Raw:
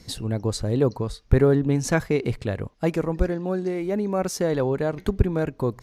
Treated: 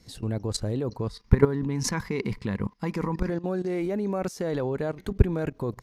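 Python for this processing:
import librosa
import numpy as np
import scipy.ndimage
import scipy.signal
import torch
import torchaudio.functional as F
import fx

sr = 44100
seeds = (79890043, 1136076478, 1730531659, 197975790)

y = fx.graphic_eq_31(x, sr, hz=(200, 630, 1000, 2000, 5000, 8000), db=(11, -11, 12, 7, 7, -3), at=(1.09, 3.3))
y = fx.level_steps(y, sr, step_db=15)
y = F.gain(torch.from_numpy(y), 2.5).numpy()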